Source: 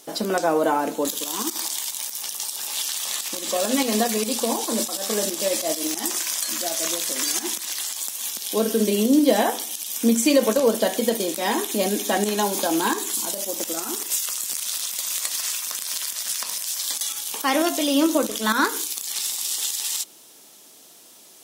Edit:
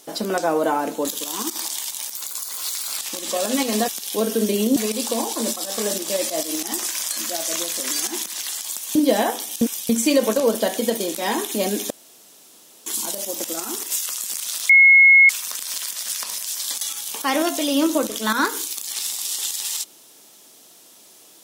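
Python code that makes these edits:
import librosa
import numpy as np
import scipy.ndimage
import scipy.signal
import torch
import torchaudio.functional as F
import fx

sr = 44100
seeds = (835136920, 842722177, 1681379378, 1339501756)

y = fx.edit(x, sr, fx.speed_span(start_s=2.16, length_s=1.02, speed=1.24),
    fx.move(start_s=8.27, length_s=0.88, to_s=4.08),
    fx.reverse_span(start_s=9.81, length_s=0.28),
    fx.room_tone_fill(start_s=12.1, length_s=0.96),
    fx.bleep(start_s=14.89, length_s=0.6, hz=2170.0, db=-7.5), tone=tone)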